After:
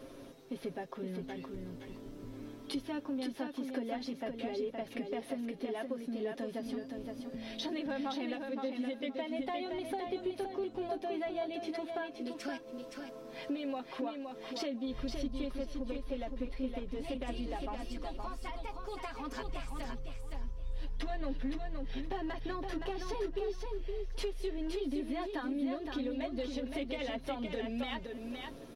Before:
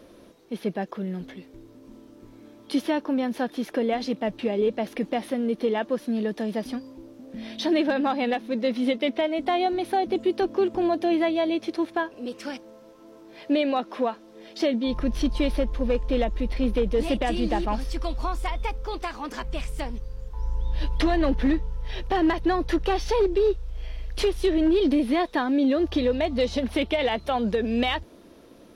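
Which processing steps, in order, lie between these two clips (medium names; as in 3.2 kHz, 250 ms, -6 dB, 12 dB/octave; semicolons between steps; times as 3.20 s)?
bass shelf 170 Hz +3.5 dB; comb 7.4 ms, depth 77%; compression 3:1, threshold -38 dBFS, peak gain reduction 18.5 dB; on a send: feedback delay 518 ms, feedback 20%, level -5 dB; on the sum: trim -2.5 dB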